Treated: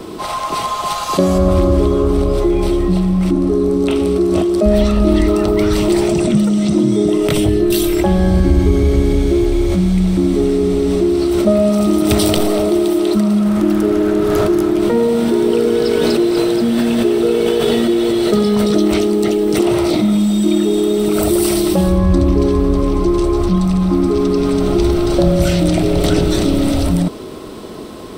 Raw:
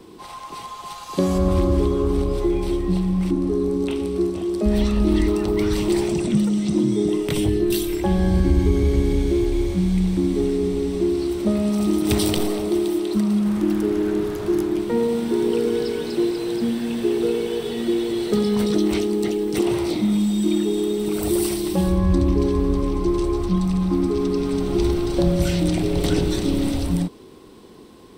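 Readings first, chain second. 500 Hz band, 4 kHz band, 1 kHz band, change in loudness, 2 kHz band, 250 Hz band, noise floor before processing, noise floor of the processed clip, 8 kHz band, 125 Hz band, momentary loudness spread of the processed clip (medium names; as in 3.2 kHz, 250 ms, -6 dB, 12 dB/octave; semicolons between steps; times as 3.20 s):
+8.0 dB, +7.5 dB, +10.0 dB, +7.0 dB, +7.5 dB, +6.5 dB, -39 dBFS, -23 dBFS, +7.0 dB, +6.0 dB, 2 LU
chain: small resonant body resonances 630/1300 Hz, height 11 dB, ringing for 45 ms; in parallel at -3 dB: compressor with a negative ratio -27 dBFS, ratio -0.5; on the sum: trim +5 dB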